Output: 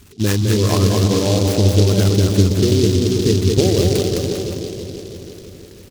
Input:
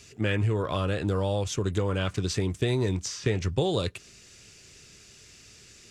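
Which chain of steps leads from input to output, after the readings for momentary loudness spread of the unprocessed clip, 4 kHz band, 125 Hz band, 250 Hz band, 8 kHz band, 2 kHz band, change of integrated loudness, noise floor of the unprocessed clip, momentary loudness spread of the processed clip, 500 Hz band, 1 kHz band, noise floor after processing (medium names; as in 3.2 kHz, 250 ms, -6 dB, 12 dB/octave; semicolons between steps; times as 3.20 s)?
3 LU, +12.5 dB, +13.0 dB, +14.0 dB, +13.5 dB, +4.5 dB, +12.0 dB, -53 dBFS, 14 LU, +11.5 dB, +6.5 dB, -40 dBFS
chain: resonances exaggerated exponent 2; resampled via 8 kHz; peaking EQ 130 Hz -8.5 dB 0.26 oct; bouncing-ball echo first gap 210 ms, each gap 0.9×, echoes 5; in parallel at -11.5 dB: bit crusher 6-bit; on the sum: peaking EQ 520 Hz -6.5 dB 0.27 oct; on a send: feedback echo behind a low-pass 328 ms, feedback 59%, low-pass 770 Hz, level -6 dB; on the sum: delay time shaken by noise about 4.4 kHz, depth 0.11 ms; trim +8.5 dB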